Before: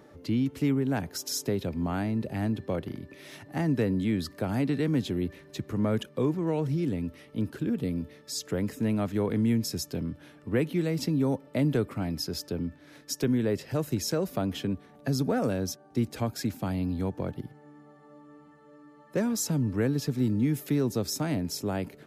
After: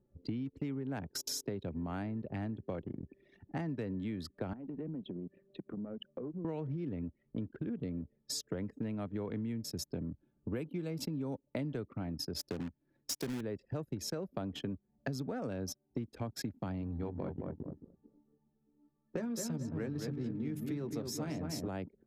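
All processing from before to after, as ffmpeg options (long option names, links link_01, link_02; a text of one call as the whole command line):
ffmpeg -i in.wav -filter_complex "[0:a]asettb=1/sr,asplit=3[link_01][link_02][link_03];[link_01]atrim=end=4.534[link_04];[link_02]atrim=start=4.53:end=6.45,asetpts=PTS-STARTPTS,afade=type=in:duration=0.004:curve=qsin,afade=type=out:start_time=1.916:duration=0.004:curve=qsin,highpass=frequency=140:width=0.5412,highpass=frequency=140:width=1.3066,equalizer=frequency=180:width_type=q:width=4:gain=4,equalizer=frequency=560:width_type=q:width=4:gain=4,equalizer=frequency=1500:width_type=q:width=4:gain=4,equalizer=frequency=2800:width_type=q:width=4:gain=4,lowpass=frequency=3800:width=0.5412,lowpass=frequency=3800:width=1.3066,acompressor=threshold=-39dB:ratio=5:attack=3.2:release=140:knee=1:detection=peak[link_05];[link_03]atrim=start=6.446[link_06];[link_04][link_05]acrossfade=duration=0.004:curve1=hsin:curve2=qsin[link_07];[link_07][link_06]acrossfade=duration=0.004:curve1=qsin:curve2=hsin,asettb=1/sr,asplit=3[link_08][link_09][link_10];[link_08]atrim=end=10.094[link_11];[link_09]atrim=start=10.09:end=11.43,asetpts=PTS-STARTPTS,afade=type=in:duration=0.004:curve=qsin,afade=type=out:start_time=1.336:duration=0.004:curve=qsin,highshelf=frequency=10000:gain=9.5,bandreject=frequency=1900:width=7.9[link_12];[link_10]atrim=start=11.426[link_13];[link_11][link_12]acrossfade=duration=0.004:curve1=hsin:curve2=qsin[link_14];[link_14][link_13]acrossfade=duration=0.004:curve1=qsin:curve2=hsin,asettb=1/sr,asplit=3[link_15][link_16][link_17];[link_15]atrim=end=12.394[link_18];[link_16]atrim=start=12.39:end=13.41,asetpts=PTS-STARTPTS,afade=type=in:duration=0.004:curve=qsin,afade=type=out:start_time=1.016:duration=0.004:curve=qsin,highpass=frequency=83:poles=1,highshelf=frequency=4800:gain=5,acrusher=bits=2:mode=log:mix=0:aa=0.000001[link_19];[link_17]atrim=start=13.406[link_20];[link_18][link_19]acrossfade=duration=0.004:curve1=hsin:curve2=qsin[link_21];[link_21][link_20]acrossfade=duration=0.004:curve1=qsin:curve2=hsin,asettb=1/sr,asplit=3[link_22][link_23][link_24];[link_22]atrim=end=16.814[link_25];[link_23]atrim=start=16.81:end=21.68,asetpts=PTS-STARTPTS,afade=type=in:duration=0.004:curve=qsin,afade=type=out:start_time=4.866:duration=0.004:curve=qsin,bandreject=frequency=50:width_type=h:width=6,bandreject=frequency=100:width_type=h:width=6,bandreject=frequency=150:width_type=h:width=6,bandreject=frequency=200:width_type=h:width=6,bandreject=frequency=250:width_type=h:width=6,asplit=2[link_26][link_27];[link_27]adelay=13,volume=-7.5dB[link_28];[link_26][link_28]amix=inputs=2:normalize=0,atrim=end_sample=214767,asplit=2[link_29][link_30];[link_30]adelay=219,lowpass=frequency=2500:poles=1,volume=-5dB,asplit=2[link_31][link_32];[link_32]adelay=219,lowpass=frequency=2500:poles=1,volume=0.39,asplit=2[link_33][link_34];[link_34]adelay=219,lowpass=frequency=2500:poles=1,volume=0.39,asplit=2[link_35][link_36];[link_36]adelay=219,lowpass=frequency=2500:poles=1,volume=0.39,asplit=2[link_37][link_38];[link_38]adelay=219,lowpass=frequency=2500:poles=1,volume=0.39[link_39];[link_29][link_31][link_33][link_35][link_37][link_39]amix=inputs=6:normalize=0,atrim=end_sample=214767[link_40];[link_24]atrim=start=21.676[link_41];[link_25][link_40]acrossfade=duration=0.004:curve1=hsin:curve2=qsin[link_42];[link_42][link_41]acrossfade=duration=0.004:curve1=qsin:curve2=hsin,anlmdn=1.58,highshelf=frequency=11000:gain=-4.5,acompressor=threshold=-38dB:ratio=6,volume=2dB" out.wav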